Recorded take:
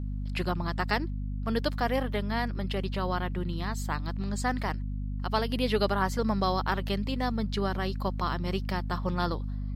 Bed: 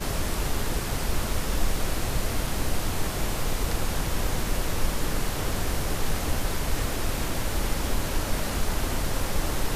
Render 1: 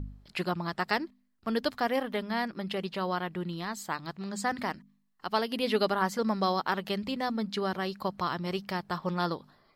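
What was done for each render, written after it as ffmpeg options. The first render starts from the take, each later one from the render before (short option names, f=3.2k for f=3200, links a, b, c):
-af "bandreject=f=50:t=h:w=4,bandreject=f=100:t=h:w=4,bandreject=f=150:t=h:w=4,bandreject=f=200:t=h:w=4,bandreject=f=250:t=h:w=4"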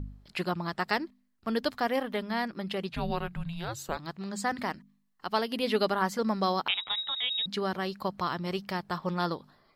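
-filter_complex "[0:a]asettb=1/sr,asplit=3[a][b][c];[a]atrim=end=2.894[d];[b]atrim=start=2.89:end=3.97,asetpts=PTS-STARTPTS,afade=t=in:d=0.004:c=qsin,afade=t=out:st=1.076:d=0.004:c=qsin,afreqshift=-340[e];[c]atrim=start=3.966[f];[d][e]acrossfade=d=0.004:c1=hsin:c2=qsin[g];[g][f]acrossfade=d=0.004:c1=qsin:c2=hsin,asettb=1/sr,asplit=3[h][i][j];[h]atrim=end=6.684[k];[i]atrim=start=6.68:end=7.46,asetpts=PTS-STARTPTS,afade=t=in:d=0.004:c=qsin,afade=t=out:st=0.776:d=0.004:c=qsin,lowpass=f=3.4k:t=q:w=0.5098,lowpass=f=3.4k:t=q:w=0.6013,lowpass=f=3.4k:t=q:w=0.9,lowpass=f=3.4k:t=q:w=2.563,afreqshift=-4000[l];[j]atrim=start=7.456[m];[k][l]acrossfade=d=0.004:c1=hsin:c2=qsin[n];[n][m]acrossfade=d=0.004:c1=qsin:c2=hsin"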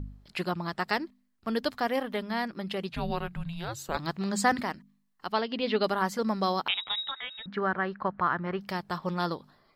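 -filter_complex "[0:a]asettb=1/sr,asplit=3[a][b][c];[a]atrim=end=3.944[d];[b]atrim=start=3.94:end=4.61,asetpts=PTS-STARTPTS,afade=t=in:d=0.004:c=qsin,afade=t=out:st=0.666:d=0.004:c=qsin,acontrast=60[e];[c]atrim=start=4.606[f];[d][e]acrossfade=d=0.004:c1=hsin:c2=qsin[g];[g][f]acrossfade=d=0.004:c1=qsin:c2=hsin,asettb=1/sr,asplit=3[h][i][j];[h]atrim=end=5.324[k];[i]atrim=start=5.32:end=5.84,asetpts=PTS-STARTPTS,afade=t=in:d=0.004:c=qsin,afade=t=out:st=0.516:d=0.004:c=qsin,lowpass=f=4.7k:w=0.5412,lowpass=f=4.7k:w=1.3066[l];[j]atrim=start=5.836[m];[k][l]acrossfade=d=0.004:c1=hsin:c2=qsin[n];[n][m]acrossfade=d=0.004:c1=qsin:c2=hsin,asettb=1/sr,asplit=3[o][p][q];[o]atrim=end=7.114[r];[p]atrim=start=7.11:end=8.61,asetpts=PTS-STARTPTS,afade=t=in:d=0.004:c=qsin,afade=t=out:st=1.496:d=0.004:c=qsin,lowpass=f=1.6k:t=q:w=2.7[s];[q]atrim=start=8.606[t];[r][s]acrossfade=d=0.004:c1=hsin:c2=qsin[u];[u][t]acrossfade=d=0.004:c1=qsin:c2=hsin"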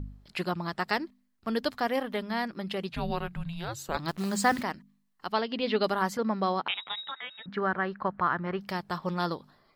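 -filter_complex "[0:a]asettb=1/sr,asplit=3[a][b][c];[a]atrim=end=4.084[d];[b]atrim=start=4.08:end=4.63,asetpts=PTS-STARTPTS,afade=t=in:d=0.004:c=qsin,afade=t=out:st=0.546:d=0.004:c=qsin,acrusher=bits=8:dc=4:mix=0:aa=0.000001[e];[c]atrim=start=4.626[f];[d][e]acrossfade=d=0.004:c1=hsin:c2=qsin[g];[g][f]acrossfade=d=0.004:c1=qsin:c2=hsin,asettb=1/sr,asplit=3[h][i][j];[h]atrim=end=6.174[k];[i]atrim=start=6.17:end=7.49,asetpts=PTS-STARTPTS,afade=t=in:d=0.004:c=qsin,afade=t=out:st=1.316:d=0.004:c=qsin,highpass=110,lowpass=3k[l];[j]atrim=start=7.486[m];[k][l]acrossfade=d=0.004:c1=hsin:c2=qsin[n];[n][m]acrossfade=d=0.004:c1=qsin:c2=hsin"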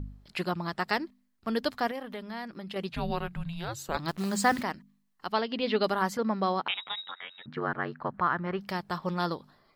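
-filter_complex "[0:a]asettb=1/sr,asplit=3[a][b][c];[a]atrim=end=1.914[d];[b]atrim=start=1.91:end=2.76,asetpts=PTS-STARTPTS,afade=t=in:d=0.004:c=qsin,afade=t=out:st=0.846:d=0.004:c=qsin,acompressor=threshold=-40dB:ratio=2:attack=3.2:release=140:knee=1:detection=peak[e];[c]atrim=start=2.756[f];[d][e]acrossfade=d=0.004:c1=hsin:c2=qsin[g];[g][f]acrossfade=d=0.004:c1=qsin:c2=hsin,asettb=1/sr,asplit=3[h][i][j];[h]atrim=end=7.014[k];[i]atrim=start=7.01:end=8.14,asetpts=PTS-STARTPTS,afade=t=in:d=0.004:c=qsin,afade=t=out:st=1.126:d=0.004:c=qsin,aeval=exprs='val(0)*sin(2*PI*45*n/s)':c=same[l];[j]atrim=start=8.136[m];[k][l]acrossfade=d=0.004:c1=hsin:c2=qsin[n];[n][m]acrossfade=d=0.004:c1=qsin:c2=hsin"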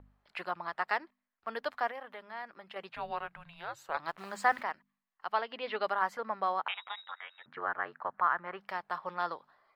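-filter_complex "[0:a]acrossover=split=570 2500:gain=0.0794 1 0.158[a][b][c];[a][b][c]amix=inputs=3:normalize=0"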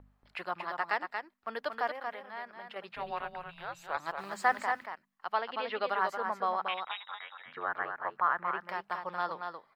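-af "aecho=1:1:231:0.501"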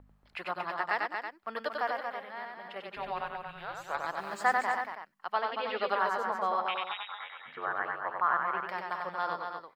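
-af "aecho=1:1:94:0.668"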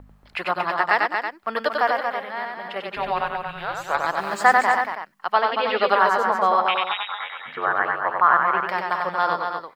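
-af "volume=11.5dB,alimiter=limit=-2dB:level=0:latency=1"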